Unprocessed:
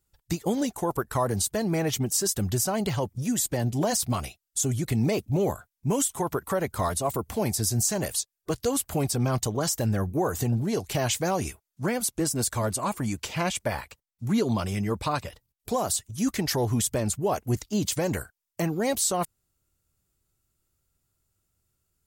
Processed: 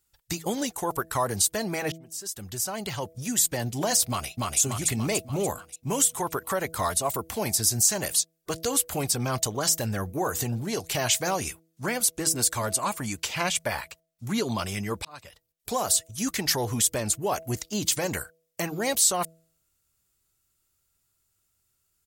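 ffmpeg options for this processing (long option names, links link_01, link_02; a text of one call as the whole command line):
ffmpeg -i in.wav -filter_complex "[0:a]asplit=2[link_01][link_02];[link_02]afade=type=in:start_time=4.08:duration=0.01,afade=type=out:start_time=4.59:duration=0.01,aecho=0:1:290|580|870|1160|1450|1740|2030|2320:0.944061|0.519233|0.285578|0.157068|0.0863875|0.0475131|0.0261322|0.0143727[link_03];[link_01][link_03]amix=inputs=2:normalize=0,asplit=3[link_04][link_05][link_06];[link_04]atrim=end=1.92,asetpts=PTS-STARTPTS,afade=type=out:start_time=1.916:duration=0.004:curve=hsin[link_07];[link_05]atrim=start=1.92:end=15.05,asetpts=PTS-STARTPTS,afade=type=in:duration=1.44,afade=type=out:start_time=13.126:duration=0.004:curve=hsin[link_08];[link_06]atrim=start=15.05,asetpts=PTS-STARTPTS,afade=type=in:duration=0.65[link_09];[link_07][link_08][link_09]concat=n=3:v=0:a=1,tiltshelf=frequency=790:gain=-5,bandreject=frequency=162.9:width_type=h:width=4,bandreject=frequency=325.8:width_type=h:width=4,bandreject=frequency=488.7:width_type=h:width=4,bandreject=frequency=651.6:width_type=h:width=4" out.wav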